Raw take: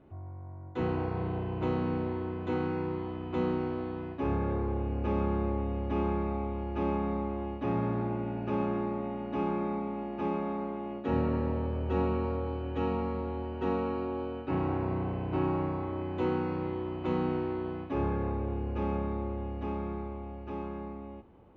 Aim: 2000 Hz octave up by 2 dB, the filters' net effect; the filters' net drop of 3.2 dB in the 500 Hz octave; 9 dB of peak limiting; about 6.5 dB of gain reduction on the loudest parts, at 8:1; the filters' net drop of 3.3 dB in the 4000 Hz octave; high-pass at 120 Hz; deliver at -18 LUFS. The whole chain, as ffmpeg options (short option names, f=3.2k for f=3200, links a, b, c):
-af "highpass=120,equalizer=f=500:t=o:g=-4.5,equalizer=f=2k:t=o:g=5,equalizer=f=4k:t=o:g=-8.5,acompressor=threshold=-34dB:ratio=8,volume=25dB,alimiter=limit=-9.5dB:level=0:latency=1"